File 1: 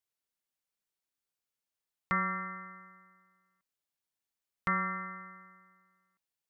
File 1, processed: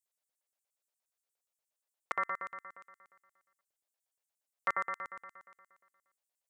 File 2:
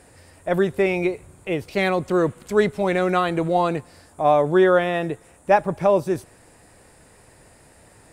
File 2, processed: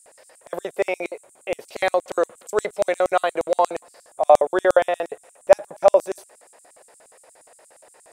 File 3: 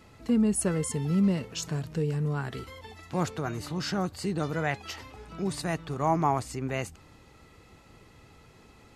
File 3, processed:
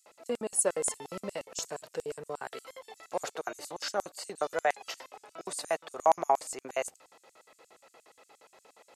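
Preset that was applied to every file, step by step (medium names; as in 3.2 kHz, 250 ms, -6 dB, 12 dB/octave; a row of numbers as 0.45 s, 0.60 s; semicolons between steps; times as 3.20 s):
LFO high-pass square 8.5 Hz 580–7800 Hz; trim -1 dB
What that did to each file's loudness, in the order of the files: -3.0 LU, -0.5 LU, -3.5 LU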